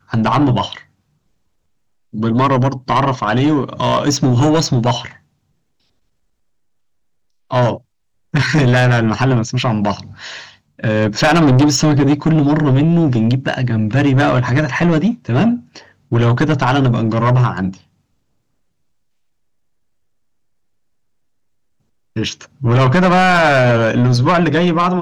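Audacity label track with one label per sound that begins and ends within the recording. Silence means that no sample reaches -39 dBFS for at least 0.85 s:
2.130000	5.170000	sound
7.500000	17.810000	sound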